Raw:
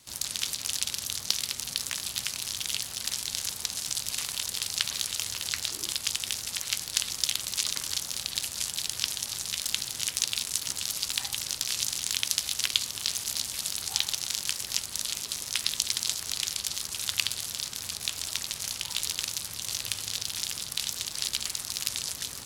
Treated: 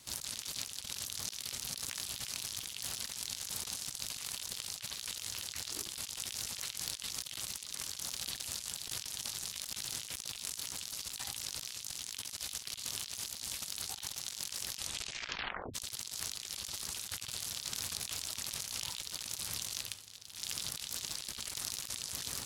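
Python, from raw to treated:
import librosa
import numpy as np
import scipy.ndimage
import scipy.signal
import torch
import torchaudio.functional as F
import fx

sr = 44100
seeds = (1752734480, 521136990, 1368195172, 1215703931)

y = fx.edit(x, sr, fx.tape_stop(start_s=14.74, length_s=1.0),
    fx.fade_down_up(start_s=19.68, length_s=0.95, db=-19.5, fade_s=0.42, curve='qua'), tone=tone)
y = fx.over_compress(y, sr, threshold_db=-38.0, ratio=-1.0)
y = y * 10.0 ** (-4.5 / 20.0)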